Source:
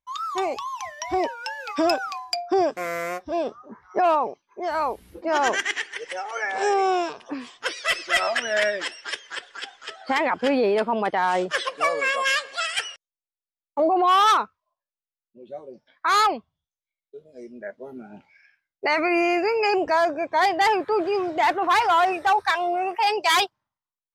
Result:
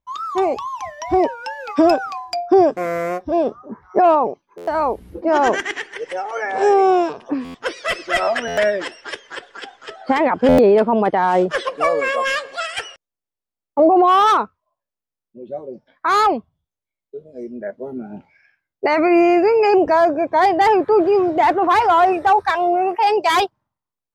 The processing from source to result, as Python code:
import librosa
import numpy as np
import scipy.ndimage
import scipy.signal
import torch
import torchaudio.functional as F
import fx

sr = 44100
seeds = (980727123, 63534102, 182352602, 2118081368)

y = fx.tilt_shelf(x, sr, db=7.0, hz=1100.0)
y = fx.buffer_glitch(y, sr, at_s=(4.57, 7.44, 8.47, 10.48), block=512, repeats=8)
y = y * 10.0 ** (4.0 / 20.0)